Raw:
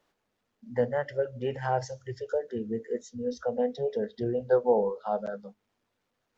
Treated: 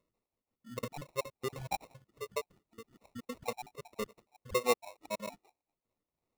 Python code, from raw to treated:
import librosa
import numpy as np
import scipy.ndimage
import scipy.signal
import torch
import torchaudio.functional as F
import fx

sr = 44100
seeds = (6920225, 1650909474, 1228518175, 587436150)

y = fx.spec_dropout(x, sr, seeds[0], share_pct=61)
y = fx.sample_hold(y, sr, seeds[1], rate_hz=1600.0, jitter_pct=0)
y = y * 10.0 ** (-5.0 / 20.0)